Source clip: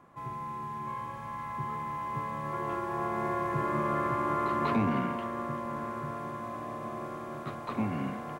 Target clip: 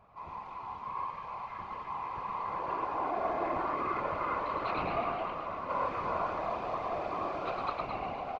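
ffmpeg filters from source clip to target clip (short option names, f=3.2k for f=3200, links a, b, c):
-filter_complex "[0:a]acrossover=split=120[a][b];[a]acompressor=mode=upward:threshold=-53dB:ratio=2.5[c];[b]highpass=f=310:w=0.5412,highpass=f=310:w=1.3066,equalizer=f=330:t=q:w=4:g=-3,equalizer=f=730:t=q:w=4:g=8,equalizer=f=1.2k:t=q:w=4:g=4,equalizer=f=1.7k:t=q:w=4:g=-6,equalizer=f=2.5k:t=q:w=4:g=8,equalizer=f=4.4k:t=q:w=4:g=6,lowpass=f=5.2k:w=0.5412,lowpass=f=5.2k:w=1.3066[d];[c][d]amix=inputs=2:normalize=0,asettb=1/sr,asplit=3[e][f][g];[e]atrim=end=5.694[h];[f]atrim=start=5.69:end=7.7,asetpts=PTS-STARTPTS,afade=t=in:d=0.004:c=qsin,afade=t=out:st=2.006:d=0.004:c=qsin,acontrast=63[i];[g]atrim=start=7.696[j];[h][i]acrossfade=d=0.004:c1=hsin:c2=qsin[k];[k][j]acrossfade=d=0.004:c1=qsin:c2=hsin,aecho=1:1:107.9|218.7:0.708|0.447,afftfilt=real='hypot(re,im)*cos(2*PI*random(0))':imag='hypot(re,im)*sin(2*PI*random(1))':win_size=512:overlap=0.75,asplit=8[l][m][n][o][p][q][r][s];[m]adelay=251,afreqshift=-59,volume=-13dB[t];[n]adelay=502,afreqshift=-118,volume=-17.4dB[u];[o]adelay=753,afreqshift=-177,volume=-21.9dB[v];[p]adelay=1004,afreqshift=-236,volume=-26.3dB[w];[q]adelay=1255,afreqshift=-295,volume=-30.7dB[x];[r]adelay=1506,afreqshift=-354,volume=-35.2dB[y];[s]adelay=1757,afreqshift=-413,volume=-39.6dB[z];[l][t][u][v][w][x][y][z]amix=inputs=8:normalize=0"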